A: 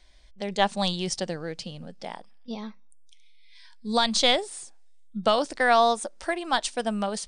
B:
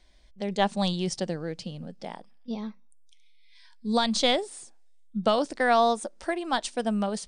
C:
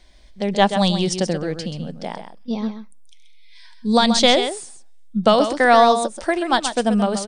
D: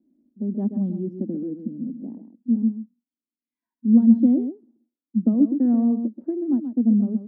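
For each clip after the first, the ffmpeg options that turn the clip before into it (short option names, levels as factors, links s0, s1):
-af "equalizer=f=210:t=o:w=2.9:g=6.5,volume=0.631"
-af "aecho=1:1:131:0.355,volume=2.66"
-af "asuperpass=centerf=260:order=4:qfactor=3.2,volume=2.37"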